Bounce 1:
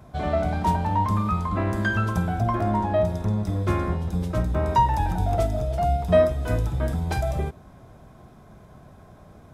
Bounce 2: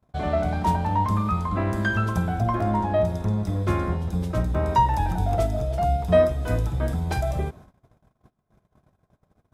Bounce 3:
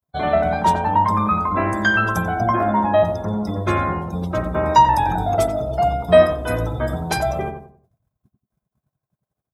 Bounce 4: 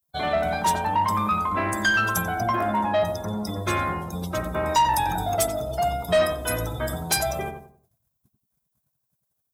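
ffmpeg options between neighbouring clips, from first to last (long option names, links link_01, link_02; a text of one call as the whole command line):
ffmpeg -i in.wav -af "agate=range=-29dB:threshold=-44dB:ratio=16:detection=peak" out.wav
ffmpeg -i in.wav -filter_complex "[0:a]afftdn=noise_reduction=25:noise_floor=-44,aemphasis=mode=production:type=bsi,asplit=2[link_01][link_02];[link_02]adelay=90,lowpass=frequency=1300:poles=1,volume=-5.5dB,asplit=2[link_03][link_04];[link_04]adelay=90,lowpass=frequency=1300:poles=1,volume=0.34,asplit=2[link_05][link_06];[link_06]adelay=90,lowpass=frequency=1300:poles=1,volume=0.34,asplit=2[link_07][link_08];[link_08]adelay=90,lowpass=frequency=1300:poles=1,volume=0.34[link_09];[link_01][link_03][link_05][link_07][link_09]amix=inputs=5:normalize=0,volume=7.5dB" out.wav
ffmpeg -i in.wav -af "crystalizer=i=5.5:c=0,asoftclip=type=tanh:threshold=-8dB,volume=-6dB" out.wav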